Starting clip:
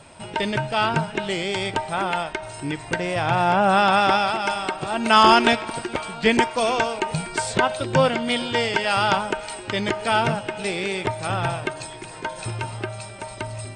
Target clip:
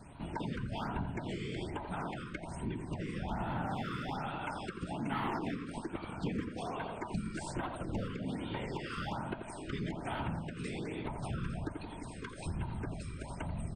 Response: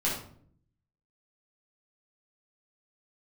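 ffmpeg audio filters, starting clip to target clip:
-filter_complex "[0:a]tiltshelf=frequency=850:gain=7,acrossover=split=340|2300[link_01][link_02][link_03];[link_02]aeval=exprs='clip(val(0),-1,0.141)':channel_layout=same[link_04];[link_03]alimiter=level_in=3dB:limit=-24dB:level=0:latency=1,volume=-3dB[link_05];[link_01][link_04][link_05]amix=inputs=3:normalize=0,afftfilt=real='hypot(re,im)*cos(2*PI*random(0))':imag='hypot(re,im)*sin(2*PI*random(1))':win_size=512:overlap=0.75,asplit=2[link_06][link_07];[link_07]adelay=85,lowpass=frequency=1400:poles=1,volume=-6.5dB,asplit=2[link_08][link_09];[link_09]adelay=85,lowpass=frequency=1400:poles=1,volume=0.41,asplit=2[link_10][link_11];[link_11]adelay=85,lowpass=frequency=1400:poles=1,volume=0.41,asplit=2[link_12][link_13];[link_13]adelay=85,lowpass=frequency=1400:poles=1,volume=0.41,asplit=2[link_14][link_15];[link_15]adelay=85,lowpass=frequency=1400:poles=1,volume=0.41[link_16];[link_08][link_10][link_12][link_14][link_16]amix=inputs=5:normalize=0[link_17];[link_06][link_17]amix=inputs=2:normalize=0,acompressor=threshold=-34dB:ratio=3,equalizer=frequency=510:width=1.4:gain=-9.5,bandreject=frequency=50:width_type=h:width=6,bandreject=frequency=100:width_type=h:width=6,bandreject=frequency=150:width_type=h:width=6,bandreject=frequency=200:width_type=h:width=6,bandreject=frequency=250:width_type=h:width=6,afftfilt=real='re*(1-between(b*sr/1024,700*pow(6600/700,0.5+0.5*sin(2*PI*1.2*pts/sr))/1.41,700*pow(6600/700,0.5+0.5*sin(2*PI*1.2*pts/sr))*1.41))':imag='im*(1-between(b*sr/1024,700*pow(6600/700,0.5+0.5*sin(2*PI*1.2*pts/sr))/1.41,700*pow(6600/700,0.5+0.5*sin(2*PI*1.2*pts/sr))*1.41))':win_size=1024:overlap=0.75"

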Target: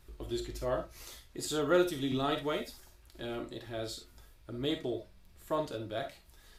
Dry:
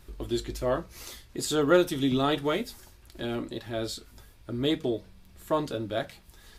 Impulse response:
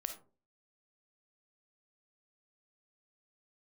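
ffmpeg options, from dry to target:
-filter_complex "[0:a]equalizer=frequency=220:width_type=o:width=0.58:gain=-4[link_01];[1:a]atrim=start_sample=2205,atrim=end_sample=3528[link_02];[link_01][link_02]afir=irnorm=-1:irlink=0,volume=-4.5dB"

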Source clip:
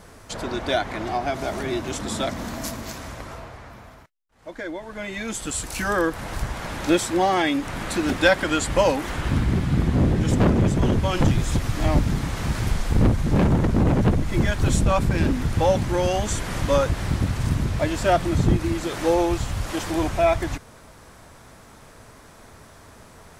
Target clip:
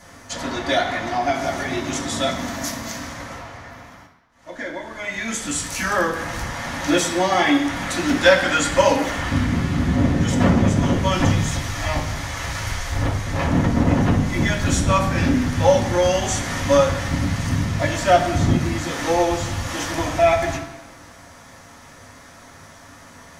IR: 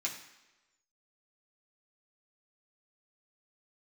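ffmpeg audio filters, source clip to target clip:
-filter_complex "[0:a]asettb=1/sr,asplit=3[link_01][link_02][link_03];[link_01]atrim=end=11.454[link_04];[link_02]atrim=start=11.45:end=13.47,asetpts=PTS-STARTPTS,afade=type=in:duration=0.004:curve=qsin,afade=type=out:start_time=2.016:duration=0.004:curve=qsin,equalizer=frequency=210:width=1.1:gain=-14.5[link_05];[link_03]atrim=start=13.466[link_06];[link_04][link_05]acrossfade=duration=0.004:curve1=hsin:curve2=qsin[link_07];[link_07][link_06]acrossfade=duration=0.004:curve1=qsin:curve2=hsin[link_08];[1:a]atrim=start_sample=2205,asetrate=37485,aresample=44100[link_09];[link_08][link_09]afir=irnorm=-1:irlink=0,volume=1dB"

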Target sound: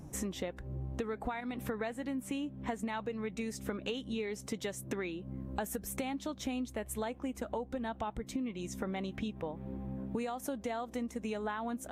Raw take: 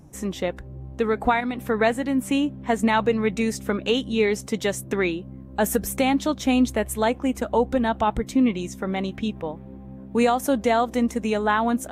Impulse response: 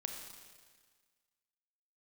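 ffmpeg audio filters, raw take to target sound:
-af "acompressor=threshold=-34dB:ratio=12"

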